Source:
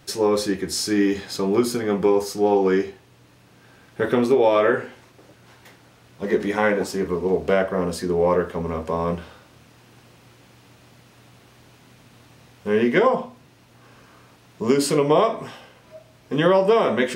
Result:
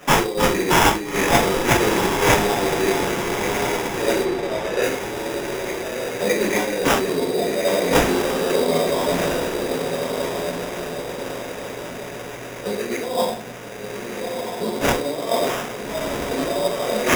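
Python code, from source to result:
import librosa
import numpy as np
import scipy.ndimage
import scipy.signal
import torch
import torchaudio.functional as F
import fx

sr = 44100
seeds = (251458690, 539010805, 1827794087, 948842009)

y = fx.over_compress(x, sr, threshold_db=-29.0, ratio=-1.0)
y = scipy.signal.sosfilt(scipy.signal.butter(2, 440.0, 'highpass', fs=sr, output='sos'), y)
y = fx.peak_eq(y, sr, hz=1200.0, db=-14.0, octaves=1.0)
y = fx.echo_diffused(y, sr, ms=1319, feedback_pct=47, wet_db=-4)
y = fx.room_shoebox(y, sr, seeds[0], volume_m3=520.0, walls='furnished', distance_m=5.9)
y = fx.sample_hold(y, sr, seeds[1], rate_hz=4300.0, jitter_pct=0)
y = fx.high_shelf(y, sr, hz=fx.line((4.24, 5500.0), (4.82, 8800.0)), db=-11.5, at=(4.24, 4.82), fade=0.02)
y = y * librosa.db_to_amplitude(4.0)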